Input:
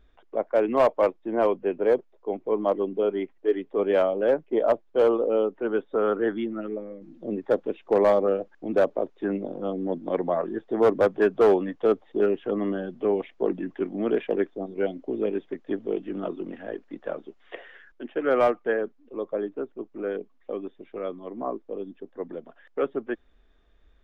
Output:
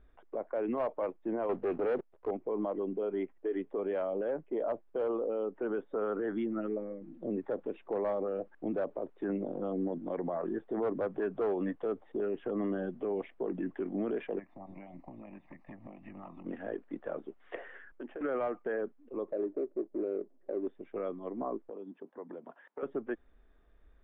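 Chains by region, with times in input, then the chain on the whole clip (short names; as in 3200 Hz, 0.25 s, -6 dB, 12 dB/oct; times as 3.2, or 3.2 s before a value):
1.49–2.31 sample leveller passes 2 + Doppler distortion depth 0.13 ms
14.38–16.44 spectral limiter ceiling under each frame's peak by 13 dB + compressor 12:1, threshold -35 dBFS + fixed phaser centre 2200 Hz, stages 8
17.55–18.21 compressor 16:1, threshold -38 dBFS + sample leveller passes 1 + air absorption 230 m
19.28–20.67 median filter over 41 samples + compressor 2:1, threshold -47 dBFS + small resonant body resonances 370/570 Hz, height 15 dB, ringing for 25 ms
21.69–22.83 HPF 160 Hz 24 dB/oct + compressor 4:1, threshold -39 dBFS + bell 950 Hz +8 dB 0.34 oct
whole clip: LPF 2100 Hz 12 dB/oct; limiter -24 dBFS; gain -2 dB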